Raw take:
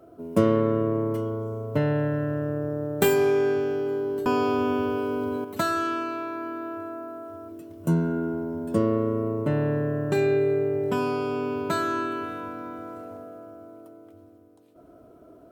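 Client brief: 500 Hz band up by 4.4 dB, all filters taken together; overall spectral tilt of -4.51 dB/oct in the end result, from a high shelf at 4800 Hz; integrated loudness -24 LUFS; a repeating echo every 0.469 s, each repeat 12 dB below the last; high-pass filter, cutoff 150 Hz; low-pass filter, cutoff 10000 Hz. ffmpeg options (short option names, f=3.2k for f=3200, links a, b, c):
-af "highpass=150,lowpass=10k,equalizer=f=500:t=o:g=6,highshelf=f=4.8k:g=-3,aecho=1:1:469|938|1407:0.251|0.0628|0.0157,volume=-1.5dB"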